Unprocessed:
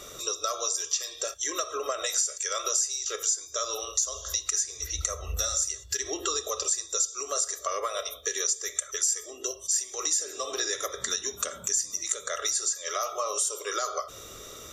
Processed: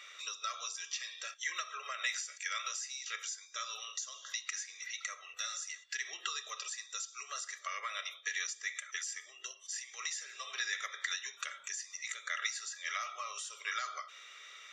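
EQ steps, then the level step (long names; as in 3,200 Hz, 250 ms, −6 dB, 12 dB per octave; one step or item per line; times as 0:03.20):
high-pass with resonance 2,100 Hz, resonance Q 3
head-to-tape spacing loss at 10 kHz 26 dB
+1.0 dB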